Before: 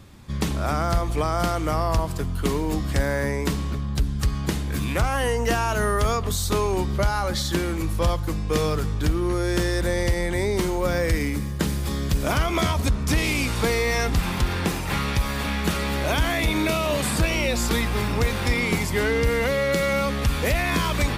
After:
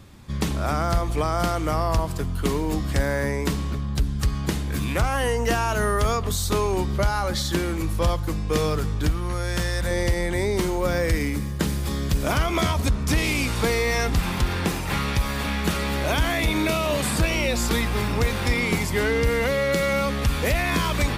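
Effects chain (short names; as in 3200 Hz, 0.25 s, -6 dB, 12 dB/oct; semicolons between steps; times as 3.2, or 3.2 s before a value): 9.09–9.91 bell 350 Hz -11 dB 0.72 oct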